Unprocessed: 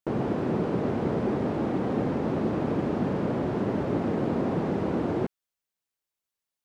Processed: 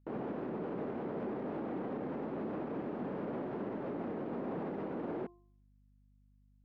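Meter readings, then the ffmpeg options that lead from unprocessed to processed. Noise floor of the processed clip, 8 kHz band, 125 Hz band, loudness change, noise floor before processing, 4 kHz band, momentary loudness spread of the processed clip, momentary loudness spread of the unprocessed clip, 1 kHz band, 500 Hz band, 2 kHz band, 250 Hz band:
-66 dBFS, no reading, -16.5 dB, -11.5 dB, under -85 dBFS, under -15 dB, 1 LU, 1 LU, -10.0 dB, -10.5 dB, -11.0 dB, -12.0 dB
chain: -af "highpass=200,lowpass=2500,bandreject=f=349.3:t=h:w=4,bandreject=f=698.6:t=h:w=4,bandreject=f=1047.9:t=h:w=4,alimiter=limit=0.0631:level=0:latency=1:release=46,aeval=exprs='val(0)+0.00126*(sin(2*PI*50*n/s)+sin(2*PI*2*50*n/s)/2+sin(2*PI*3*50*n/s)/3+sin(2*PI*4*50*n/s)/4+sin(2*PI*5*50*n/s)/5)':c=same,volume=0.447"

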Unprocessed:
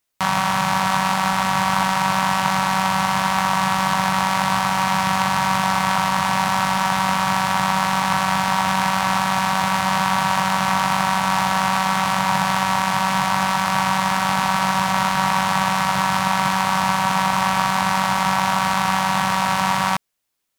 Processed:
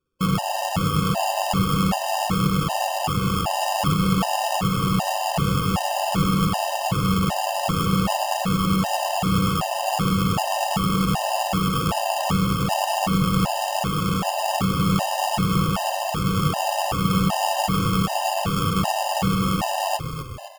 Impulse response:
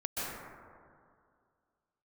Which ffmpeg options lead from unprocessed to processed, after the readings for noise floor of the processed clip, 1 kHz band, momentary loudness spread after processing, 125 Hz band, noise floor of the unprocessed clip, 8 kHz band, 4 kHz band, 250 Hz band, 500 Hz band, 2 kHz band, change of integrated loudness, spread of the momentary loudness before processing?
-28 dBFS, -6.0 dB, 3 LU, +5.0 dB, -21 dBFS, -3.0 dB, -3.0 dB, +2.5 dB, +3.5 dB, -10.5 dB, -3.5 dB, 1 LU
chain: -filter_complex "[0:a]bandreject=f=590:w=15,flanger=delay=4.2:depth=9.6:regen=-35:speed=0.46:shape=sinusoidal,lowshelf=f=400:g=11.5,aecho=1:1:1.6:0.85,alimiter=limit=0.376:level=0:latency=1:release=499,acrusher=samples=22:mix=1:aa=0.000001,asplit=7[s0][s1][s2][s3][s4][s5][s6];[s1]adelay=256,afreqshift=-32,volume=0.335[s7];[s2]adelay=512,afreqshift=-64,volume=0.178[s8];[s3]adelay=768,afreqshift=-96,volume=0.0944[s9];[s4]adelay=1024,afreqshift=-128,volume=0.0501[s10];[s5]adelay=1280,afreqshift=-160,volume=0.0263[s11];[s6]adelay=1536,afreqshift=-192,volume=0.014[s12];[s0][s7][s8][s9][s10][s11][s12]amix=inputs=7:normalize=0,afftfilt=real='re*gt(sin(2*PI*1.3*pts/sr)*(1-2*mod(floor(b*sr/1024/520),2)),0)':imag='im*gt(sin(2*PI*1.3*pts/sr)*(1-2*mod(floor(b*sr/1024/520),2)),0)':win_size=1024:overlap=0.75"

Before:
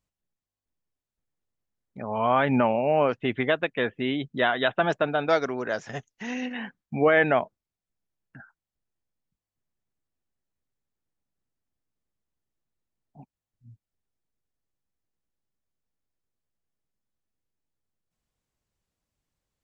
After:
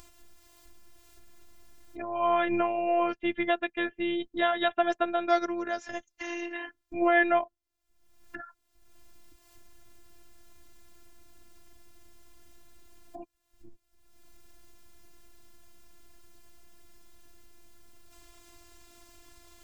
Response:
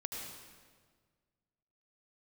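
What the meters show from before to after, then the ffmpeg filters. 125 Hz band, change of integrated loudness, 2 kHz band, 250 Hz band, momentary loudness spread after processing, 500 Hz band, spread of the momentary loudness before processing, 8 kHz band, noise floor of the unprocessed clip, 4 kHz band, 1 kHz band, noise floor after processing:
under -15 dB, -3.5 dB, -3.5 dB, -2.5 dB, 16 LU, -4.5 dB, 14 LU, no reading, under -85 dBFS, -3.5 dB, -1.0 dB, -76 dBFS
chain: -af "acompressor=mode=upward:threshold=0.0562:ratio=2.5,afftfilt=real='hypot(re,im)*cos(PI*b)':imag='0':win_size=512:overlap=0.75"

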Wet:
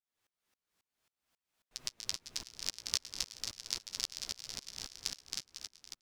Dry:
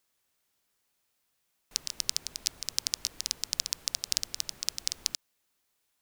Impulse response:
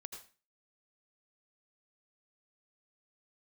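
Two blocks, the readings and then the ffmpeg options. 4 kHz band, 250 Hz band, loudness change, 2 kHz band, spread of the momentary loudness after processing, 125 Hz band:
-6.0 dB, -2.0 dB, -7.5 dB, -4.0 dB, 8 LU, -2.0 dB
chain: -filter_complex "[0:a]highshelf=f=7300:g=-10,flanger=delay=8:depth=9.5:regen=31:speed=0.55:shape=sinusoidal,asplit=2[s0][s1];[s1]aecho=0:1:270|499.5|694.6|860.4|1001:0.631|0.398|0.251|0.158|0.1[s2];[s0][s2]amix=inputs=2:normalize=0,aeval=exprs='val(0)*pow(10,-28*if(lt(mod(-3.7*n/s,1),2*abs(-3.7)/1000),1-mod(-3.7*n/s,1)/(2*abs(-3.7)/1000),(mod(-3.7*n/s,1)-2*abs(-3.7)/1000)/(1-2*abs(-3.7)/1000))/20)':c=same,volume=2.37"

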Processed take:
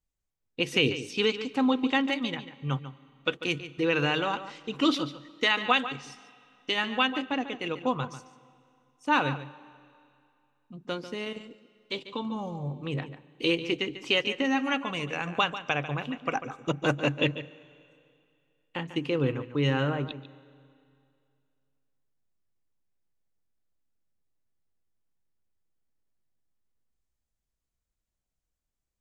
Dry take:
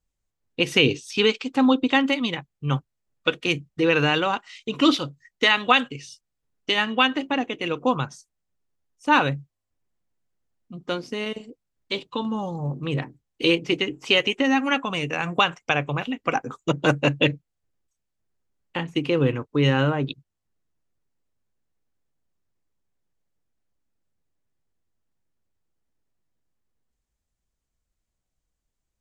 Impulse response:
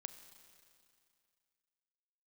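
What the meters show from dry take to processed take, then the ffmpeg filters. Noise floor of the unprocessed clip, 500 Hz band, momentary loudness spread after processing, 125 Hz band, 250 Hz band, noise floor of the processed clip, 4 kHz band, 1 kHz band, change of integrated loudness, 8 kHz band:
-81 dBFS, -5.5 dB, 12 LU, -6.0 dB, -5.5 dB, -84 dBFS, -6.0 dB, -5.5 dB, -6.0 dB, -6.0 dB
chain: -filter_complex "[0:a]asplit=2[s0][s1];[1:a]atrim=start_sample=2205,highshelf=f=8000:g=-7.5,adelay=144[s2];[s1][s2]afir=irnorm=-1:irlink=0,volume=0.447[s3];[s0][s3]amix=inputs=2:normalize=0,volume=0.501"

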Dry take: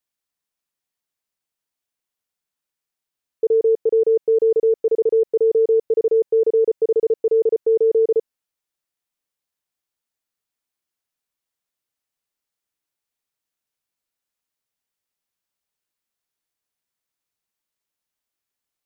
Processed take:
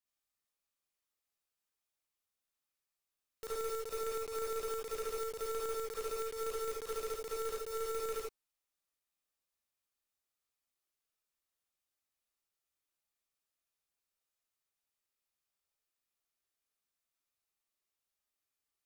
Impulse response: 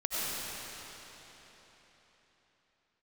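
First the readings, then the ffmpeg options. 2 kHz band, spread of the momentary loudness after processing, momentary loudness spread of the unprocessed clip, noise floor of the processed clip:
no reading, 2 LU, 2 LU, under -85 dBFS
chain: -filter_complex "[0:a]aeval=exprs='(tanh(22.4*val(0)+0.6)-tanh(0.6))/22.4':c=same,aeval=exprs='(mod(37.6*val(0)+1,2)-1)/37.6':c=same[s0];[1:a]atrim=start_sample=2205,afade=t=out:st=0.22:d=0.01,atrim=end_sample=10143,asetrate=83790,aresample=44100[s1];[s0][s1]afir=irnorm=-1:irlink=0"

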